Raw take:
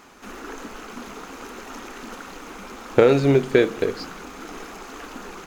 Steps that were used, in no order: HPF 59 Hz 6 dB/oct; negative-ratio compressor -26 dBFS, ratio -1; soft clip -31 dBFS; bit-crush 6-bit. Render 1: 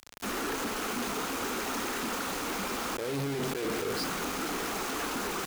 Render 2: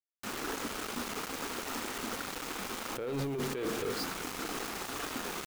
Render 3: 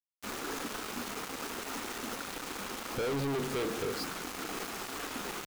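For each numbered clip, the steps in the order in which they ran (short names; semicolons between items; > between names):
negative-ratio compressor > soft clip > bit-crush > HPF; HPF > bit-crush > negative-ratio compressor > soft clip; bit-crush > HPF > soft clip > negative-ratio compressor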